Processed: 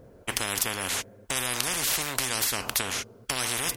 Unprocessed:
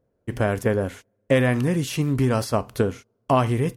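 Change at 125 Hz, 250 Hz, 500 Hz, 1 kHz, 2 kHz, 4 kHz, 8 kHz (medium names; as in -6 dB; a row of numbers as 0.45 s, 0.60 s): -18.5 dB, -16.5 dB, -15.0 dB, -6.5 dB, 0.0 dB, +8.5 dB, +12.5 dB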